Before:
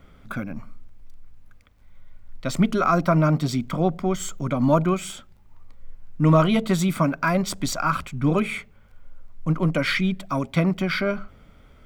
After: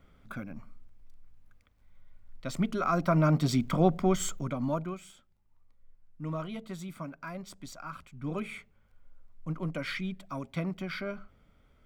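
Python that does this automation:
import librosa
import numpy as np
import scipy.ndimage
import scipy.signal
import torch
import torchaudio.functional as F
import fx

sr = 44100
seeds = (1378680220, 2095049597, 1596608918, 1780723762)

y = fx.gain(x, sr, db=fx.line((2.77, -9.5), (3.58, -2.0), (4.3, -2.0), (4.5, -9.0), (5.12, -19.0), (8.01, -19.0), (8.42, -12.5)))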